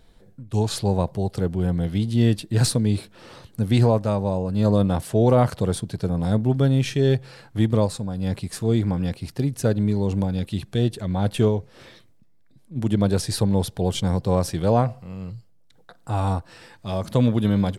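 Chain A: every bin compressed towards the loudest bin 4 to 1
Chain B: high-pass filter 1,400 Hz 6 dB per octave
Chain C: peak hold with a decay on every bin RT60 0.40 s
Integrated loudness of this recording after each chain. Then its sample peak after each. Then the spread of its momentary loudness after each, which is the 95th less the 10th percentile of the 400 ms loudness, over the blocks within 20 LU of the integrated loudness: −31.5, −34.0, −22.0 LKFS; −7.5, −14.0, −5.5 dBFS; 8, 14, 9 LU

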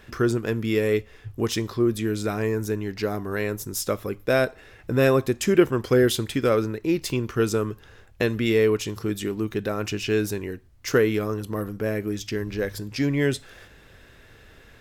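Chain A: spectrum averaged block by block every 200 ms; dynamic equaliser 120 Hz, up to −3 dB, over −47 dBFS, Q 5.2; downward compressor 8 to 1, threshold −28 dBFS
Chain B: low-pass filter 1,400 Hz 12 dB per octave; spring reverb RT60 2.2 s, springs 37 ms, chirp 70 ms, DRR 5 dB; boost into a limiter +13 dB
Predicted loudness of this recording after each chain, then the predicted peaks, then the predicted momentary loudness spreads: −33.5, −12.0 LKFS; −17.5, −1.0 dBFS; 7, 8 LU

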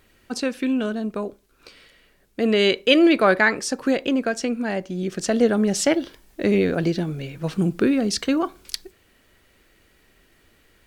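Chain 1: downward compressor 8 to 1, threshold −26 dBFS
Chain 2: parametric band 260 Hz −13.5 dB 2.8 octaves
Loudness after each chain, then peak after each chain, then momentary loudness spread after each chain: −31.0, −28.0 LKFS; −9.5, −4.5 dBFS; 8, 16 LU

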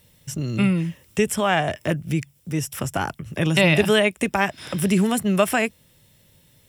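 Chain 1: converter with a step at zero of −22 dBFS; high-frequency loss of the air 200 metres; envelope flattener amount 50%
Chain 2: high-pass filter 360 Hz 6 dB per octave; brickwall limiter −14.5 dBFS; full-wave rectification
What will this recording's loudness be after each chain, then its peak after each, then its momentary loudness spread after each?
−18.0, −31.5 LKFS; −2.5, −14.5 dBFS; 6, 9 LU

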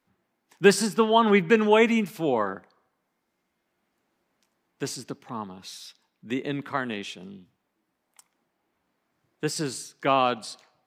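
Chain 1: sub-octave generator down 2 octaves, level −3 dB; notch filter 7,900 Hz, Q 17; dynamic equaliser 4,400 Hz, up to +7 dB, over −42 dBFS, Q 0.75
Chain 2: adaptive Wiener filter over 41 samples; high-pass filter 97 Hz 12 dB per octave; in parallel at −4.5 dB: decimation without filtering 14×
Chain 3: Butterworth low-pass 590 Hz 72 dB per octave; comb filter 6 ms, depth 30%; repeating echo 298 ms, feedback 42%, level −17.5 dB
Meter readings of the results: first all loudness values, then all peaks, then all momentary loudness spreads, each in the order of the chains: −23.0, −21.0, −27.0 LKFS; −2.0, −1.0, −8.0 dBFS; 18, 19, 19 LU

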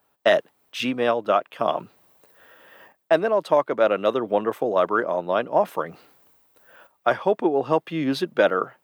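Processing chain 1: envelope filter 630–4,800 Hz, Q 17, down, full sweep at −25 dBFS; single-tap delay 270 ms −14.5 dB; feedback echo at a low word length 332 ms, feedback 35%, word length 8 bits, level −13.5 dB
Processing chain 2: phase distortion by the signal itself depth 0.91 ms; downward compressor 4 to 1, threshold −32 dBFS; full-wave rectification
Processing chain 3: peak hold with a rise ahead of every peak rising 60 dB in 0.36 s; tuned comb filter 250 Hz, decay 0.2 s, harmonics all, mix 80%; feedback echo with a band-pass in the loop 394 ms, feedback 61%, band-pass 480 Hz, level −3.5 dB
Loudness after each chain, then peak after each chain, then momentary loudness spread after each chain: −30.0, −38.5, −30.5 LKFS; −12.5, −15.0, −12.5 dBFS; 15, 18, 12 LU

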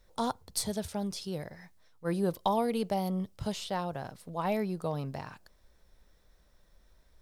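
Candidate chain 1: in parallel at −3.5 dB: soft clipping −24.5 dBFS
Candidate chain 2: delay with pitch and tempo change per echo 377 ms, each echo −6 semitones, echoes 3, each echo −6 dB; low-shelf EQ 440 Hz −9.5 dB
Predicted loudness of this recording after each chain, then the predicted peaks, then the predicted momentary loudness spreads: −30.0, −37.5 LKFS; −13.0, −16.5 dBFS; 10, 11 LU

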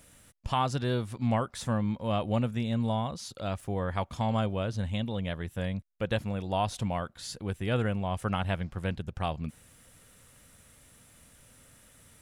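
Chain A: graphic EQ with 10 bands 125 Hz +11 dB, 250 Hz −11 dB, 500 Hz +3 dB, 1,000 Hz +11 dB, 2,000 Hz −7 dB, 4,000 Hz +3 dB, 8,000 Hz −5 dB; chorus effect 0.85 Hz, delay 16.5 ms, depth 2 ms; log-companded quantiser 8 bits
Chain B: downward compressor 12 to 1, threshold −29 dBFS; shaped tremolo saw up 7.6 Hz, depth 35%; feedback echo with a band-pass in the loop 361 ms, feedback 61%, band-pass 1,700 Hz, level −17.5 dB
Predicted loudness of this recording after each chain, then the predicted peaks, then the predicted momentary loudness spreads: −29.0, −37.5 LKFS; −10.5, −20.5 dBFS; 11, 21 LU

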